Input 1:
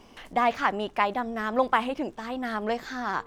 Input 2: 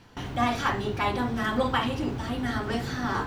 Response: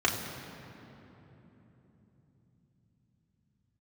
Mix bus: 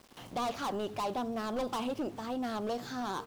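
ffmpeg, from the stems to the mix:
-filter_complex "[0:a]highpass=frequency=95:poles=1,volume=28dB,asoftclip=hard,volume=-28dB,volume=-1.5dB,asplit=2[link_01][link_02];[1:a]flanger=delay=16.5:depth=3.2:speed=0.69,highpass=frequency=95:width=0.5412,highpass=frequency=95:width=1.3066,adelay=7.9,volume=-11.5dB[link_03];[link_02]apad=whole_len=144450[link_04];[link_03][link_04]sidechaincompress=threshold=-39dB:ratio=8:attack=16:release=117[link_05];[link_01][link_05]amix=inputs=2:normalize=0,equalizer=frequency=1900:width=1.8:gain=-11,aeval=exprs='val(0)*gte(abs(val(0)),0.00251)':channel_layout=same"

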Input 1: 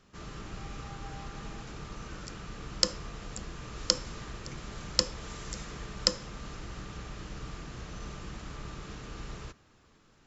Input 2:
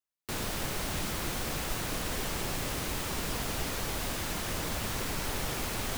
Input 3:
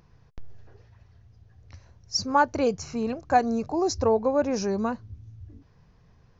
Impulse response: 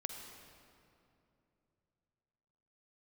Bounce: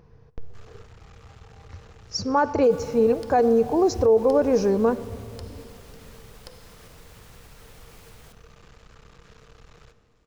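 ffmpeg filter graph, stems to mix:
-filter_complex "[0:a]acrossover=split=4900[link_01][link_02];[link_02]acompressor=threshold=-60dB:ratio=4:attack=1:release=60[link_03];[link_01][link_03]amix=inputs=2:normalize=0,aeval=exprs='max(val(0),0)':channel_layout=same,adelay=400,volume=-6.5dB,asplit=2[link_04][link_05];[link_05]volume=-4dB[link_06];[1:a]adelay=2350,volume=-11.5dB,asplit=2[link_07][link_08];[link_08]volume=-11dB[link_09];[2:a]highshelf=frequency=2100:gain=-8,volume=2dB,asplit=2[link_10][link_11];[link_11]volume=-8dB[link_12];[link_04][link_07]amix=inputs=2:normalize=0,acrossover=split=290[link_13][link_14];[link_14]acompressor=threshold=-51dB:ratio=6[link_15];[link_13][link_15]amix=inputs=2:normalize=0,alimiter=level_in=17dB:limit=-24dB:level=0:latency=1:release=94,volume=-17dB,volume=0dB[link_16];[3:a]atrim=start_sample=2205[link_17];[link_06][link_09][link_12]amix=inputs=3:normalize=0[link_18];[link_18][link_17]afir=irnorm=-1:irlink=0[link_19];[link_10][link_16][link_19]amix=inputs=3:normalize=0,equalizer=frequency=460:width=6.9:gain=12,alimiter=limit=-11dB:level=0:latency=1:release=27"

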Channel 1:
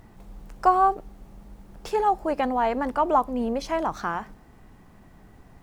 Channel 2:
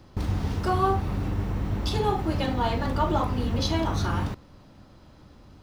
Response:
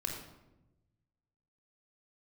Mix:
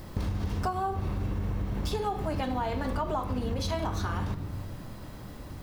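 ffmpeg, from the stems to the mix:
-filter_complex "[0:a]crystalizer=i=2:c=0,volume=1.5dB[link_01];[1:a]alimiter=limit=-20.5dB:level=0:latency=1,volume=3dB,asplit=2[link_02][link_03];[link_03]volume=-6dB[link_04];[2:a]atrim=start_sample=2205[link_05];[link_04][link_05]afir=irnorm=-1:irlink=0[link_06];[link_01][link_02][link_06]amix=inputs=3:normalize=0,acompressor=threshold=-28dB:ratio=6"

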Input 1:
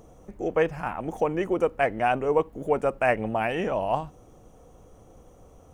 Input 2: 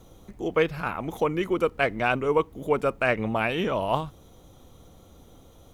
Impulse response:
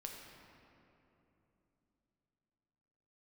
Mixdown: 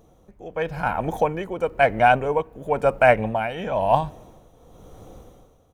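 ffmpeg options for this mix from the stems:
-filter_complex "[0:a]equalizer=frequency=7100:width_type=o:width=1.4:gain=-4,volume=-5dB,asplit=2[link_01][link_02];[link_02]volume=-19.5dB[link_03];[1:a]adelay=1.1,volume=-12dB[link_04];[2:a]atrim=start_sample=2205[link_05];[link_03][link_05]afir=irnorm=-1:irlink=0[link_06];[link_01][link_04][link_06]amix=inputs=3:normalize=0,dynaudnorm=framelen=360:gausssize=3:maxgain=12dB,tremolo=f=0.99:d=0.63"

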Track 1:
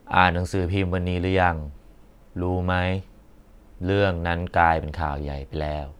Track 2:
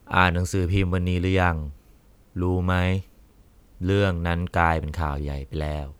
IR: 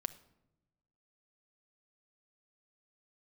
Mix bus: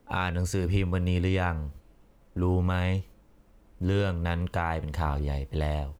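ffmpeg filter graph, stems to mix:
-filter_complex "[0:a]acrossover=split=190|3000[link_01][link_02][link_03];[link_02]acompressor=threshold=-35dB:ratio=6[link_04];[link_01][link_04][link_03]amix=inputs=3:normalize=0,aeval=exprs='clip(val(0),-1,0.0316)':channel_layout=same,volume=-7.5dB,asplit=2[link_05][link_06];[1:a]flanger=delay=3.9:depth=3.7:regen=-87:speed=0.34:shape=triangular,adelay=1.3,volume=2dB[link_07];[link_06]apad=whole_len=264438[link_08];[link_07][link_08]sidechaingate=range=-33dB:threshold=-49dB:ratio=16:detection=peak[link_09];[link_05][link_09]amix=inputs=2:normalize=0,alimiter=limit=-16dB:level=0:latency=1:release=261"

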